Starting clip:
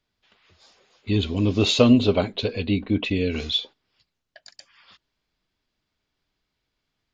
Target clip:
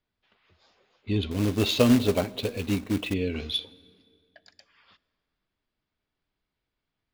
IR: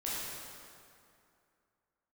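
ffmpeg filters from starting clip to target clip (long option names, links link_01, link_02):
-filter_complex "[0:a]adynamicsmooth=sensitivity=1.5:basefreq=4400,asettb=1/sr,asplit=3[link_01][link_02][link_03];[link_01]atrim=end=1.314[link_04];[link_02]atrim=start=1.31:end=3.14,asetpts=PTS-STARTPTS,afade=type=in:duration=0.004:curve=qsin,afade=type=out:start_time=1.826:duration=0.004:curve=qsin,acrusher=bits=3:mode=log:mix=0:aa=0.000001[link_05];[link_03]atrim=start=3.136[link_06];[link_04][link_05]acrossfade=duration=0.004:curve1=hsin:curve2=qsin[link_07];[link_07][link_06]acrossfade=duration=0.004:curve1=qsin:curve2=hsin,asplit=2[link_08][link_09];[1:a]atrim=start_sample=2205[link_10];[link_09][link_10]afir=irnorm=-1:irlink=0,volume=-23.5dB[link_11];[link_08][link_11]amix=inputs=2:normalize=0,volume=-4.5dB"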